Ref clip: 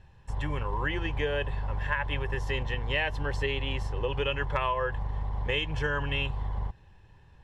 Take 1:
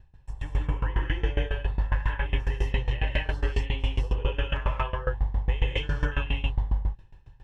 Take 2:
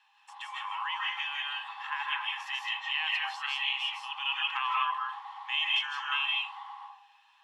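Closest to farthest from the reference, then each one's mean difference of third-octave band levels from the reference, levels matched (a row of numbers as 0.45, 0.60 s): 1, 2; 5.5, 17.0 dB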